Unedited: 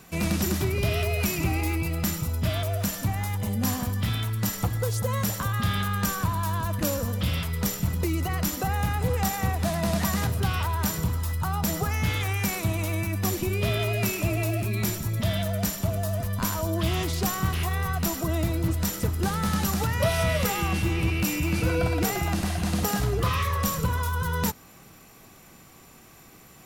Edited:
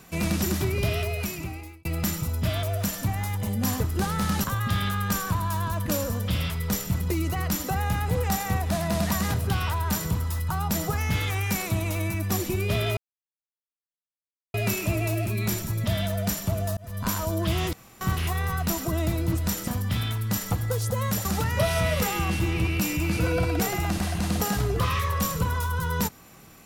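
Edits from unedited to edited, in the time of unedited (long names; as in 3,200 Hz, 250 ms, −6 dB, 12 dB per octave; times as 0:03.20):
0:00.84–0:01.85: fade out
0:03.80–0:05.37: swap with 0:19.04–0:19.68
0:13.90: splice in silence 1.57 s
0:16.13–0:16.43: fade in
0:17.09–0:17.37: fill with room tone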